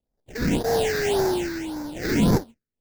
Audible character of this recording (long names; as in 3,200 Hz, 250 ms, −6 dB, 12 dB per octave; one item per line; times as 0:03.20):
aliases and images of a low sample rate 1,200 Hz, jitter 20%
phaser sweep stages 6, 1.8 Hz, lowest notch 780–2,900 Hz